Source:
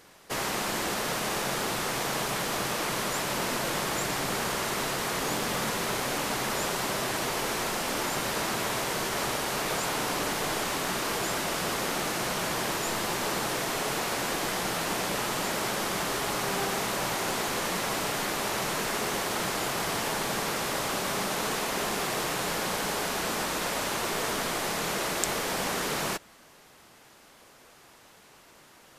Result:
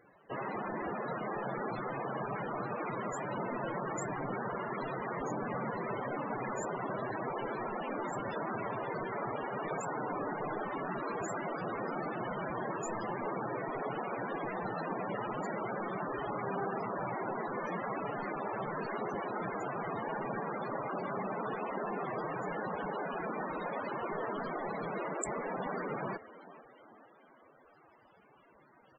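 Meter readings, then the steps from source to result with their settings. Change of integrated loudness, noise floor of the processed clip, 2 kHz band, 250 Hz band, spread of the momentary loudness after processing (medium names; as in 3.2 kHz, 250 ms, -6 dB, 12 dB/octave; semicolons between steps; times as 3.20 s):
-8.5 dB, -62 dBFS, -10.5 dB, -4.5 dB, 1 LU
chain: frequency-shifting echo 445 ms, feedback 50%, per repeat +36 Hz, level -17 dB; loudest bins only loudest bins 32; trim -3.5 dB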